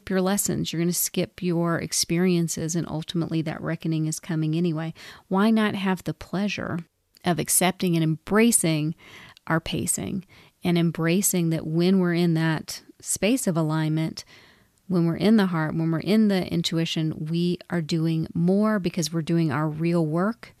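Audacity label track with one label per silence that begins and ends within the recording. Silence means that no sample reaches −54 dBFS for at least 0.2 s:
6.870000	7.150000	silence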